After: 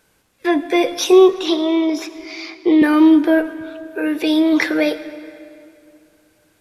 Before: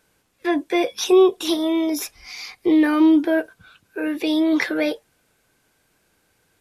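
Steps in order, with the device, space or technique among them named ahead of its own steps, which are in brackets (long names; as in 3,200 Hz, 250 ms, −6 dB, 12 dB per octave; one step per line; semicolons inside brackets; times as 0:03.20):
0:01.31–0:02.82: three-way crossover with the lows and the highs turned down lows −12 dB, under 200 Hz, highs −21 dB, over 5,300 Hz
saturated reverb return (on a send at −12 dB: convolution reverb RT60 2.5 s, pre-delay 43 ms + soft clipping −13.5 dBFS, distortion −14 dB)
on the sum: level +4 dB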